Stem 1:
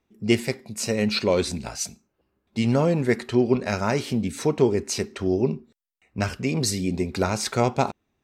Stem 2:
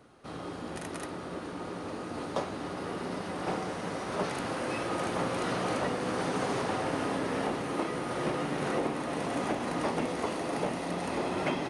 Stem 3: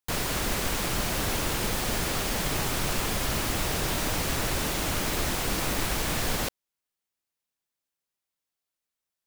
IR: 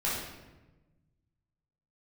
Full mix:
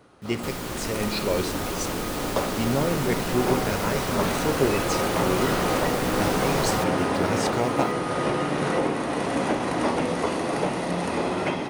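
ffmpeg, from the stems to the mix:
-filter_complex "[0:a]acrusher=bits=6:mix=0:aa=0.000001,volume=-8.5dB,asplit=2[a][b];[b]volume=-19dB[c];[1:a]volume=2dB,asplit=2[d][e];[e]volume=-14.5dB[f];[2:a]adelay=350,volume=-7.5dB[g];[3:a]atrim=start_sample=2205[h];[c][f]amix=inputs=2:normalize=0[i];[i][h]afir=irnorm=-1:irlink=0[j];[a][d][g][j]amix=inputs=4:normalize=0,dynaudnorm=f=660:g=3:m=3dB"

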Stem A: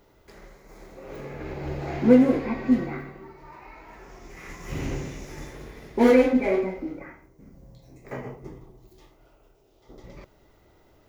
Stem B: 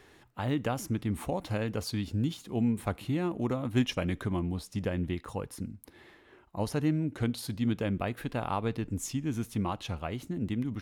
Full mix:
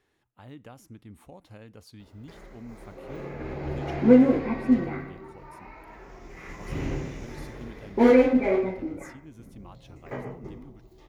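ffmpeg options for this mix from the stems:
-filter_complex "[0:a]highshelf=f=5.3k:g=-10.5,adelay=2000,volume=0dB[a];[1:a]volume=-15.5dB[b];[a][b]amix=inputs=2:normalize=0"

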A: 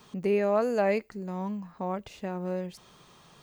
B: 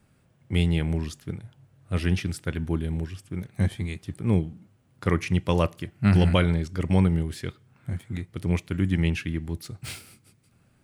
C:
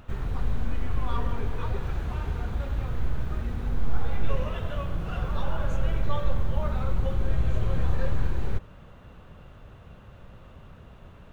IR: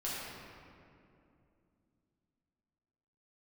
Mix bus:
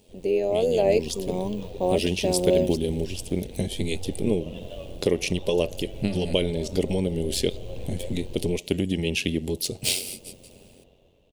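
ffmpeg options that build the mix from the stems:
-filter_complex "[0:a]agate=range=-12dB:threshold=-42dB:ratio=16:detection=peak,volume=-7dB[a];[1:a]aecho=1:1:4.8:0.35,acompressor=threshold=-25dB:ratio=6,volume=-2dB[b];[2:a]volume=-17.5dB[c];[b][c]amix=inputs=2:normalize=0,acompressor=threshold=-47dB:ratio=1.5,volume=0dB[d];[a][d]amix=inputs=2:normalize=0,firequalizer=gain_entry='entry(170,0);entry(270,8);entry(480,14);entry(1300,-14);entry(2800,12)':delay=0.05:min_phase=1,dynaudnorm=f=280:g=7:m=11.5dB,tremolo=f=91:d=0.571"

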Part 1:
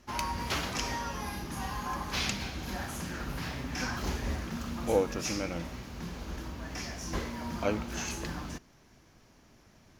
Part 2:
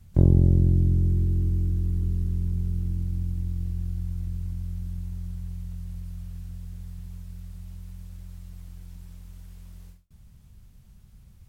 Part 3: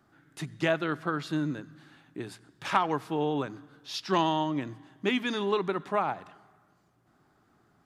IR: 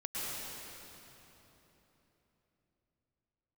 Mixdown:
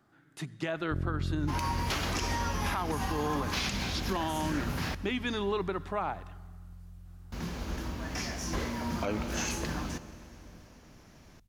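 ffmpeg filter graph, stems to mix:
-filter_complex "[0:a]adelay=1400,volume=2.5dB,asplit=3[a][b][c];[a]atrim=end=4.95,asetpts=PTS-STARTPTS,afade=t=out:st=4.946:d=0.004:c=hsin[d];[b]atrim=start=4.95:end=7.32,asetpts=PTS-STARTPTS,volume=0[e];[c]atrim=start=7.32,asetpts=PTS-STARTPTS,afade=t=in:d=0.004:c=hsin[f];[d][e][f]concat=n=3:v=0:a=1,asplit=2[g][h];[h]volume=-18.5dB[i];[1:a]adelay=750,volume=-12.5dB[j];[2:a]volume=-2dB[k];[3:a]atrim=start_sample=2205[l];[i][l]afir=irnorm=-1:irlink=0[m];[g][j][k][m]amix=inputs=4:normalize=0,alimiter=limit=-21.5dB:level=0:latency=1:release=68"

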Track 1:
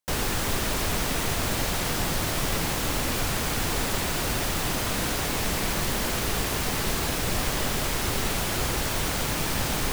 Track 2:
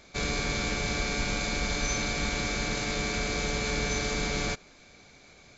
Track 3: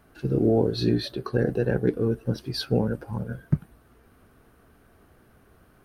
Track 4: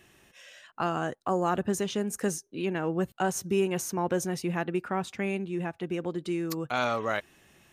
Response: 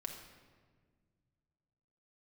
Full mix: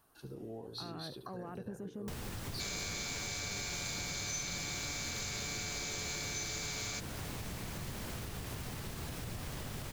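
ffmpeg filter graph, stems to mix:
-filter_complex "[0:a]adelay=2000,volume=-7dB[a];[1:a]aemphasis=mode=production:type=riaa,adelay=2450,volume=-4.5dB[b];[2:a]equalizer=f=990:w=1.5:g=12,alimiter=limit=-18.5dB:level=0:latency=1:release=236,aexciter=amount=4:drive=5.9:freq=3.2k,volume=-17.5dB,asplit=2[c][d];[d]volume=-10dB[e];[3:a]afwtdn=0.0112,highshelf=f=8.8k:g=10.5,alimiter=level_in=1dB:limit=-24dB:level=0:latency=1,volume=-1dB,volume=-10.5dB[f];[a][f]amix=inputs=2:normalize=0,equalizer=f=110:t=o:w=1.7:g=10,alimiter=level_in=2.5dB:limit=-24dB:level=0:latency=1:release=376,volume=-2.5dB,volume=0dB[g];[e]aecho=0:1:71:1[h];[b][c][g][h]amix=inputs=4:normalize=0,acompressor=threshold=-41dB:ratio=2.5"

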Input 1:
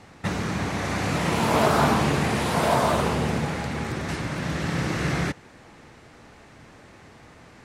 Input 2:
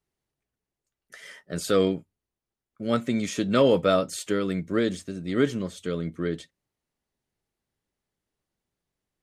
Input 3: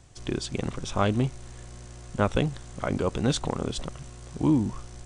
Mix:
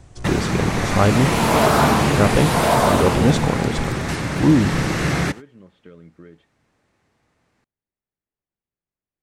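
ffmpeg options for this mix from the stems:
-filter_complex "[0:a]agate=range=-23dB:threshold=-36dB:ratio=16:detection=peak,volume=-1dB[a];[1:a]lowpass=f=2.8k:w=0.5412,lowpass=f=2.8k:w=1.3066,acompressor=threshold=-31dB:ratio=6,volume=-15dB[b];[2:a]highshelf=f=2.4k:g=-10.5,volume=2.5dB[c];[a][b][c]amix=inputs=3:normalize=0,highshelf=f=9.5k:g=6,acontrast=52"

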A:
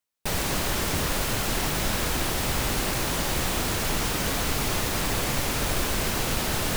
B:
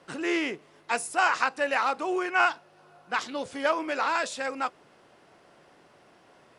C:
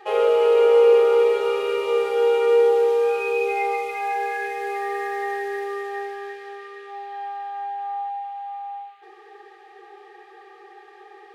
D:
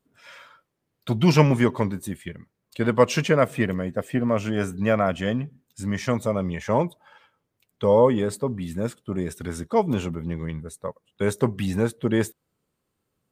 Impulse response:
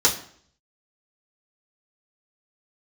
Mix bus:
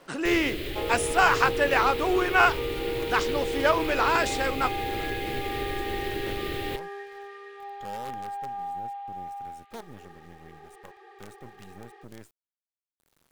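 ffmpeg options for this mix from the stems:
-filter_complex "[0:a]firequalizer=gain_entry='entry(120,0);entry(190,-10);entry(340,10);entry(860,-20);entry(2000,1);entry(3500,2);entry(5800,-17);entry(16000,-5)':delay=0.05:min_phase=1,acompressor=threshold=-30dB:ratio=6,volume=0dB[a];[1:a]volume=3dB[b];[2:a]acompressor=threshold=-25dB:ratio=6,adelay=700,volume=-5dB[c];[3:a]acompressor=mode=upward:threshold=-23dB:ratio=2.5,alimiter=limit=-14dB:level=0:latency=1:release=26,acrusher=bits=4:dc=4:mix=0:aa=0.000001,volume=-19dB[d];[a][b][c][d]amix=inputs=4:normalize=0"

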